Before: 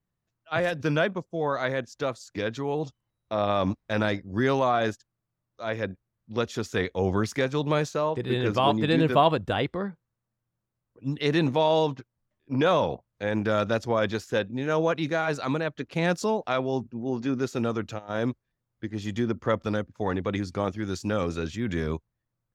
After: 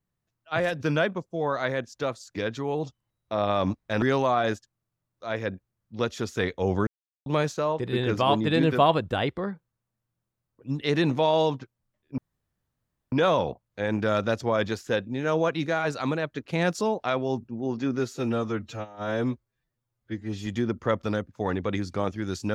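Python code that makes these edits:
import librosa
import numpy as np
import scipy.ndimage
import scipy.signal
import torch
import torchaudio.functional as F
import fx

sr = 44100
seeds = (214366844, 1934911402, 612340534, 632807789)

y = fx.edit(x, sr, fx.cut(start_s=4.02, length_s=0.37),
    fx.silence(start_s=7.24, length_s=0.39),
    fx.insert_room_tone(at_s=12.55, length_s=0.94),
    fx.stretch_span(start_s=17.42, length_s=1.65, factor=1.5), tone=tone)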